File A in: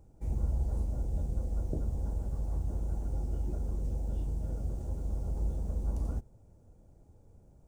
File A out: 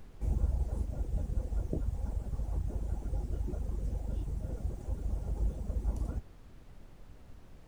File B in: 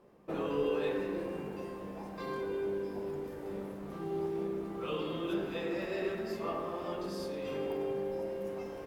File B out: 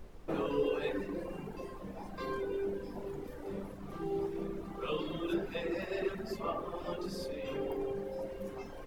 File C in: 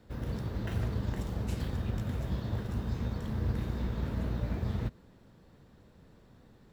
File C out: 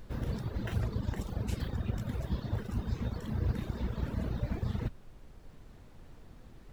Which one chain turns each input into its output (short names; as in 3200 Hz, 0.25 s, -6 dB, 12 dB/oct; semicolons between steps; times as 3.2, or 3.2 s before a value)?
reverb removal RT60 1.5 s; added noise brown -52 dBFS; gain +2 dB